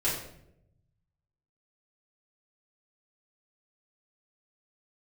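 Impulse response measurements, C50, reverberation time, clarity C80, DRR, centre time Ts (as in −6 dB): 3.5 dB, 0.80 s, 7.0 dB, −9.5 dB, 44 ms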